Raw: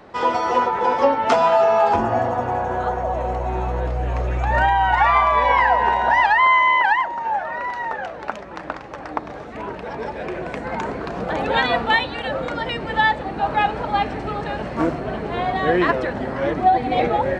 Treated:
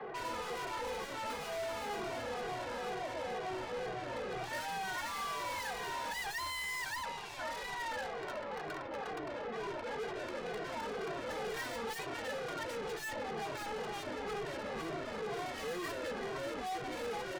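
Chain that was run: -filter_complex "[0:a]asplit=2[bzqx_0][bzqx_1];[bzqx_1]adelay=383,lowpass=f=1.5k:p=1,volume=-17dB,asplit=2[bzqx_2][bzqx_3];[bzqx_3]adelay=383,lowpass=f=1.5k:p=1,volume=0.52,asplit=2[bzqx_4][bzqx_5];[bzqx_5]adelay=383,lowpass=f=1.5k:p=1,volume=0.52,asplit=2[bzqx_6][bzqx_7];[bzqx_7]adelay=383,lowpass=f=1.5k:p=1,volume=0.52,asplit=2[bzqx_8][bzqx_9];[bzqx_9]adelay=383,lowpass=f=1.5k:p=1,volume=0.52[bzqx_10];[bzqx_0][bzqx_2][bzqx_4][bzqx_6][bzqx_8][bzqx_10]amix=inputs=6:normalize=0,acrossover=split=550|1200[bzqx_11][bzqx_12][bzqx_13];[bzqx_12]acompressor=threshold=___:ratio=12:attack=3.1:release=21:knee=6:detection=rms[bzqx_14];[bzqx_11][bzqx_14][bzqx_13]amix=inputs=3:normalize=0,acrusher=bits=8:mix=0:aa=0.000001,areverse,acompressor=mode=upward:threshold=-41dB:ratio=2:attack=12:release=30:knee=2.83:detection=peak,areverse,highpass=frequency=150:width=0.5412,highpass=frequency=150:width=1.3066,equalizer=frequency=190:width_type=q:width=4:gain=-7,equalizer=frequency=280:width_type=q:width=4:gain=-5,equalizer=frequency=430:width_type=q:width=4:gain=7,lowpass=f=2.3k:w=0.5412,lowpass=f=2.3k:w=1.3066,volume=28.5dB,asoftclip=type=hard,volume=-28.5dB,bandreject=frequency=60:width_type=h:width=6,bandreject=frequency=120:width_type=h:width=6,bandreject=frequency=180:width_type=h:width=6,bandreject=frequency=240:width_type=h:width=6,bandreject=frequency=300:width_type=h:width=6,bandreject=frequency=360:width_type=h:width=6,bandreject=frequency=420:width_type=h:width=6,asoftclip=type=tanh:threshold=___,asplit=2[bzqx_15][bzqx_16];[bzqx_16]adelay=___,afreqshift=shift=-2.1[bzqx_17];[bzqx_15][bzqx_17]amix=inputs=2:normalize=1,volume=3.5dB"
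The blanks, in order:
-34dB, -39.5dB, 2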